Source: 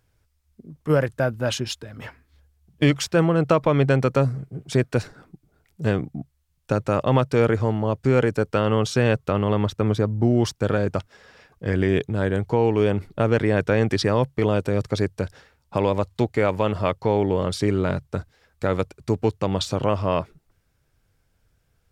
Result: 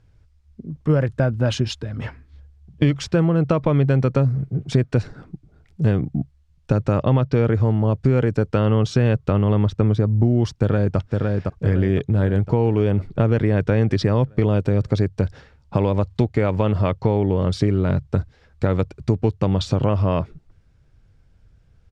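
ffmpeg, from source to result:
-filter_complex "[0:a]asettb=1/sr,asplit=3[s0][s1][s2];[s0]atrim=end=6.984[s3];[s1]atrim=start=6.98:end=7.45,asetpts=PTS-STARTPTS,afade=t=in:d=0.004:c=qsin,afade=t=out:st=0.466:d=0.004:c=qsin,lowpass=f=6200:w=0.5412,lowpass=f=6200:w=1.3066[s4];[s2]atrim=start=7.446[s5];[s3][s4]acrossfade=d=0.004:c1=hsin:c2=qsin[s6];[s6][s5]acrossfade=d=0.004:c1=qsin:c2=hsin,asplit=2[s7][s8];[s8]afade=t=in:st=10.58:d=0.01,afade=t=out:st=10.98:d=0.01,aecho=0:1:510|1020|1530|2040|2550|3060|3570|4080:0.473151|0.283891|0.170334|0.102201|0.0613204|0.0367922|0.0220753|0.0132452[s9];[s7][s9]amix=inputs=2:normalize=0,lowpass=6000,lowshelf=f=270:g=11.5,acompressor=threshold=0.126:ratio=3,volume=1.26"

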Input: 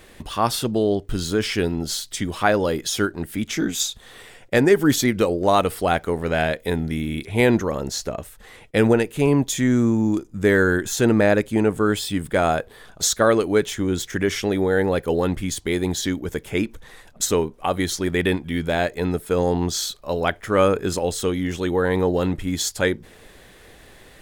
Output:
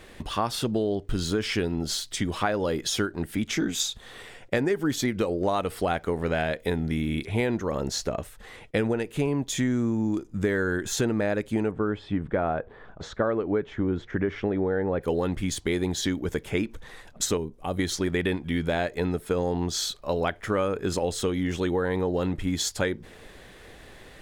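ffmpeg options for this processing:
-filter_complex "[0:a]asplit=3[s0][s1][s2];[s0]afade=t=out:st=11.7:d=0.02[s3];[s1]lowpass=1600,afade=t=in:st=11.7:d=0.02,afade=t=out:st=15:d=0.02[s4];[s2]afade=t=in:st=15:d=0.02[s5];[s3][s4][s5]amix=inputs=3:normalize=0,asettb=1/sr,asplit=3[s6][s7][s8];[s6]atrim=end=17.374[s9];[s7]atrim=start=17.37:end=17.79,asetpts=PTS-STARTPTS,afade=t=in:d=0.004:c=qsin,afade=t=out:st=0.416:d=0.004:c=qsin,equalizer=f=1600:w=0.31:g=-12[s10];[s8]atrim=start=17.786[s11];[s9][s10]acrossfade=d=0.004:c1=hsin:c2=qsin[s12];[s12][s11]acrossfade=d=0.004:c1=qsin:c2=hsin,highshelf=f=8700:g=-9,acompressor=threshold=0.0794:ratio=6"

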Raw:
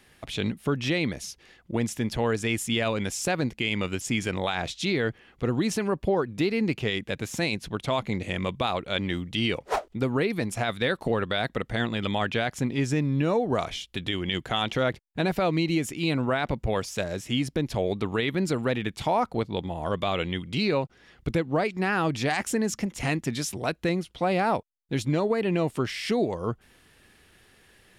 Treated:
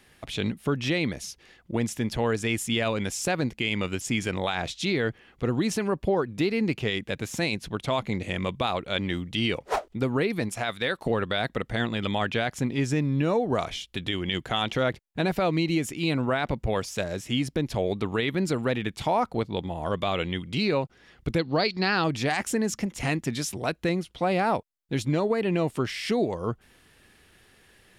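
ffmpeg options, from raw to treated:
-filter_complex "[0:a]asettb=1/sr,asplit=3[s0][s1][s2];[s0]atrim=end=10.494[s3];[s1]atrim=start=10.49:end=11.06,asetpts=PTS-STARTPTS,afade=t=in:d=0.004:c=qsin,afade=t=out:st=0.566:d=0.004:c=qsin,lowshelf=f=440:g=-6.5[s4];[s2]atrim=start=11.056[s5];[s3][s4]acrossfade=d=0.004:c1=hsin:c2=qsin[s6];[s6][s5]acrossfade=d=0.004:c1=qsin:c2=hsin,asettb=1/sr,asplit=3[s7][s8][s9];[s7]atrim=end=21.394[s10];[s8]atrim=start=21.39:end=22.04,asetpts=PTS-STARTPTS,afade=t=in:d=0.004:c=qsin,afade=t=out:st=0.646:d=0.004:c=qsin,lowpass=f=4400:t=q:w=12[s11];[s9]atrim=start=22.036[s12];[s10][s11]acrossfade=d=0.004:c1=hsin:c2=qsin[s13];[s13][s12]acrossfade=d=0.004:c1=qsin:c2=hsin"

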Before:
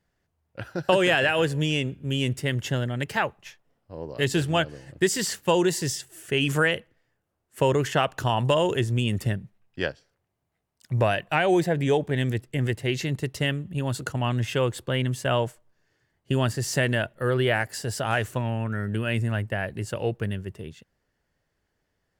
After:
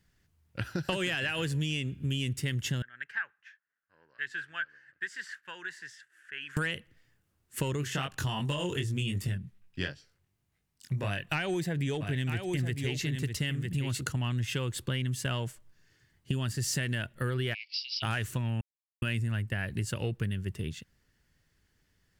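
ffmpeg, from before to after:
-filter_complex "[0:a]asettb=1/sr,asplit=3[s0][s1][s2];[s0]atrim=end=2.824[s3];[s1]atrim=start=2.82:end=6.57,asetpts=PTS-STARTPTS,afade=t=in:d=0.004:c=qsin,afade=t=out:st=3.746:d=0.004:c=qsin,bandpass=f=1600:t=q:w=8.4[s4];[s2]atrim=start=6.566[s5];[s3][s4]acrossfade=d=0.004:c1=hsin:c2=qsin[s6];[s6][s5]acrossfade=d=0.004:c1=qsin:c2=hsin,asplit=3[s7][s8][s9];[s7]afade=t=out:st=7.81:d=0.02[s10];[s8]flanger=delay=20:depth=2.8:speed=2.7,afade=t=in:st=7.81:d=0.02,afade=t=out:st=11.28:d=0.02[s11];[s9]afade=t=in:st=11.28:d=0.02[s12];[s10][s11][s12]amix=inputs=3:normalize=0,asplit=3[s13][s14][s15];[s13]afade=t=out:st=12:d=0.02[s16];[s14]aecho=1:1:955:0.398,afade=t=in:st=12:d=0.02,afade=t=out:st=13.99:d=0.02[s17];[s15]afade=t=in:st=13.99:d=0.02[s18];[s16][s17][s18]amix=inputs=3:normalize=0,asplit=3[s19][s20][s21];[s19]afade=t=out:st=17.53:d=0.02[s22];[s20]asuperpass=centerf=3500:order=20:qfactor=1.1,afade=t=in:st=17.53:d=0.02,afade=t=out:st=18.02:d=0.02[s23];[s21]afade=t=in:st=18.02:d=0.02[s24];[s22][s23][s24]amix=inputs=3:normalize=0,asplit=3[s25][s26][s27];[s25]atrim=end=18.61,asetpts=PTS-STARTPTS,afade=t=out:st=18.606:d=0.004:c=hsin[s28];[s26]atrim=start=18.61:end=19.02,asetpts=PTS-STARTPTS,volume=0[s29];[s27]atrim=start=19.02,asetpts=PTS-STARTPTS,afade=t=in:d=0.004:c=hsin[s30];[s28][s29][s30]concat=n=3:v=0:a=1,acontrast=78,equalizer=f=640:t=o:w=1.8:g=-13,acompressor=threshold=0.0355:ratio=6"

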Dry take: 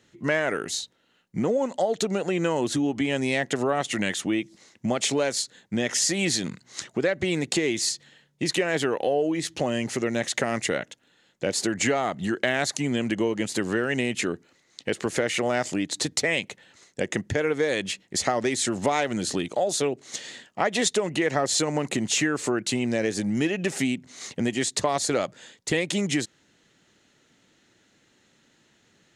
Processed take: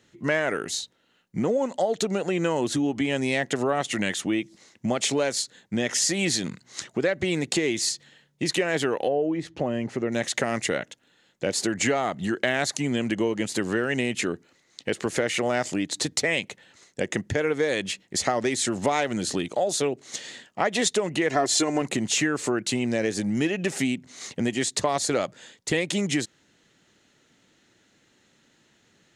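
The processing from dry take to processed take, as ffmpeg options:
-filter_complex "[0:a]asettb=1/sr,asplit=3[s0][s1][s2];[s0]atrim=end=9.084[s3];[s1]atrim=start=9.08:end=10.12,asetpts=PTS-STARTPTS,afade=t=in:d=0.004:c=qsin,afade=t=out:st=1.036:d=0.004:c=qsin,lowpass=f=1100:p=1[s4];[s2]atrim=start=10.116[s5];[s3][s4]acrossfade=d=0.004:c1=hsin:c2=qsin[s6];[s6][s5]acrossfade=d=0.004:c1=qsin:c2=hsin,asettb=1/sr,asplit=3[s7][s8][s9];[s7]atrim=end=21.304[s10];[s8]atrim=start=21.3:end=21.82,asetpts=PTS-STARTPTS,afade=t=in:d=0.004:c=qsin,afade=t=out:st=0.516:d=0.004:c=qsin,aecho=1:1:2.9:0.65,atrim=end_sample=22932[s11];[s9]atrim=start=21.816[s12];[s10][s11]acrossfade=d=0.004:c1=hsin:c2=qsin[s13];[s13][s12]acrossfade=d=0.004:c1=qsin:c2=hsin"

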